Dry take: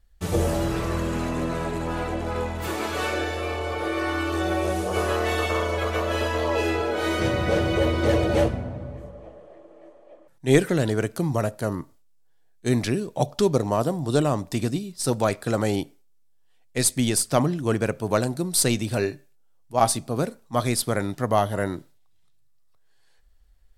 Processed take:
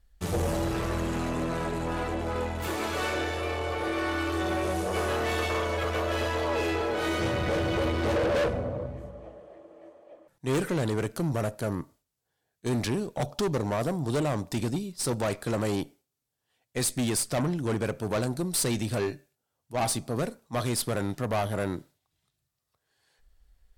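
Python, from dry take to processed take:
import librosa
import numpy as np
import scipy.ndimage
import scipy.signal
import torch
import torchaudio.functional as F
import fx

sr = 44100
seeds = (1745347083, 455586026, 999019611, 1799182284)

y = fx.peak_eq(x, sr, hz=510.0, db=13.0, octaves=0.43, at=(8.15, 8.86))
y = fx.tube_stage(y, sr, drive_db=23.0, bias=0.4)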